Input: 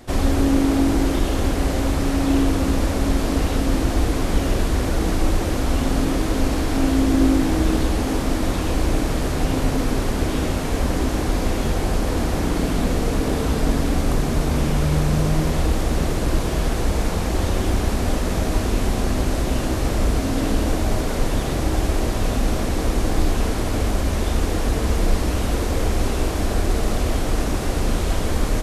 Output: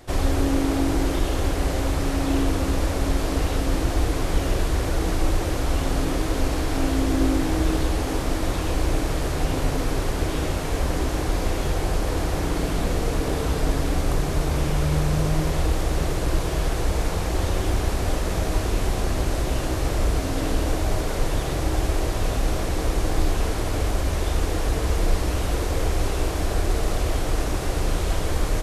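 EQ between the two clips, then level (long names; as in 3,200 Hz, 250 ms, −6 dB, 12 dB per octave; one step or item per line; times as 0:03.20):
parametric band 230 Hz −12 dB 0.31 octaves
−2.0 dB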